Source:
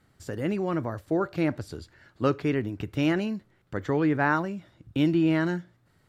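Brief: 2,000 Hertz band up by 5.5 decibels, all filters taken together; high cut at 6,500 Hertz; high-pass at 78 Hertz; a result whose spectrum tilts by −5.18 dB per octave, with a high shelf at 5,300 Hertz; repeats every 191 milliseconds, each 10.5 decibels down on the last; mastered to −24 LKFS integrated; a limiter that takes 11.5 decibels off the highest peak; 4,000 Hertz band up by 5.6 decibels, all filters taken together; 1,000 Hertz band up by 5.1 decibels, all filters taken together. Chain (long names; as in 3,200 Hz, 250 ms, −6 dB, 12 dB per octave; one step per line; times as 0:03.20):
high-pass filter 78 Hz
low-pass filter 6,500 Hz
parametric band 1,000 Hz +5 dB
parametric band 2,000 Hz +4 dB
parametric band 4,000 Hz +4.5 dB
high-shelf EQ 5,300 Hz +4 dB
brickwall limiter −17 dBFS
repeating echo 191 ms, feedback 30%, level −10.5 dB
level +5 dB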